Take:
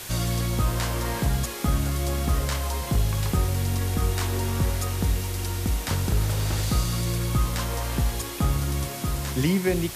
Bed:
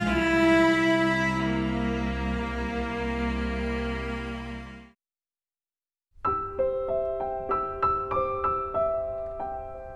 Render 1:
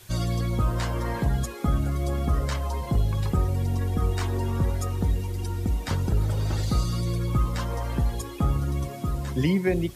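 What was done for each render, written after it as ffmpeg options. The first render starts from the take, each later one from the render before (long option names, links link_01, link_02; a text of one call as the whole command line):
ffmpeg -i in.wav -af "afftdn=noise_reduction=14:noise_floor=-34" out.wav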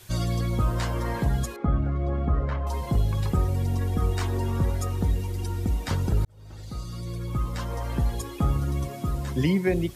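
ffmpeg -i in.wav -filter_complex "[0:a]asettb=1/sr,asplit=3[link_01][link_02][link_03];[link_01]atrim=end=1.564[link_04];[link_02]atrim=start=1.56:end=2.67,asetpts=PTS-STARTPTS,afade=type=in:duration=0.004:curve=qsin,afade=type=out:start_time=1.106:duration=0.004:curve=qsin,lowpass=1700[link_05];[link_03]atrim=start=2.666[link_06];[link_04][link_05]acrossfade=duration=0.004:curve1=hsin:curve2=qsin[link_07];[link_07][link_06]acrossfade=duration=0.004:curve1=qsin:curve2=hsin,asplit=2[link_08][link_09];[link_08]atrim=end=6.25,asetpts=PTS-STARTPTS,afade=type=out:start_time=6.246:duration=0.004:curve=hsin[link_10];[link_09]atrim=start=6.25,asetpts=PTS-STARTPTS,afade=type=in:duration=1.83[link_11];[link_10][link_11]concat=n=2:v=0:a=1" out.wav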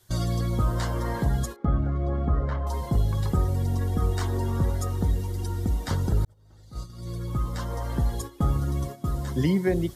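ffmpeg -i in.wav -af "agate=range=-11dB:threshold=-33dB:ratio=16:detection=peak,equalizer=frequency=2500:width=4.5:gain=-12" out.wav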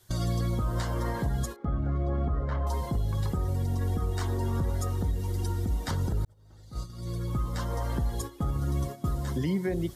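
ffmpeg -i in.wav -af "alimiter=limit=-20.5dB:level=0:latency=1:release=176" out.wav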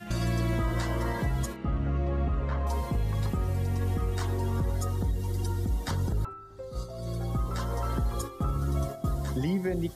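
ffmpeg -i in.wav -i bed.wav -filter_complex "[1:a]volume=-15.5dB[link_01];[0:a][link_01]amix=inputs=2:normalize=0" out.wav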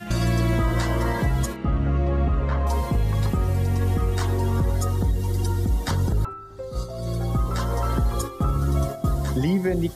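ffmpeg -i in.wav -af "volume=6.5dB" out.wav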